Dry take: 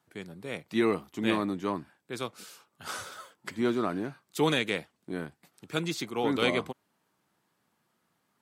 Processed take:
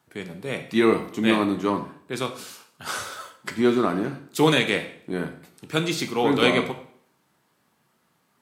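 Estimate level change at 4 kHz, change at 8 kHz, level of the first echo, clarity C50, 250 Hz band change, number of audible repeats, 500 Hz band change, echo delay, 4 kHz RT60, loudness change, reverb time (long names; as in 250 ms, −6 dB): +7.5 dB, +7.5 dB, no echo audible, 11.0 dB, +7.5 dB, no echo audible, +7.5 dB, no echo audible, 0.55 s, +7.0 dB, 0.60 s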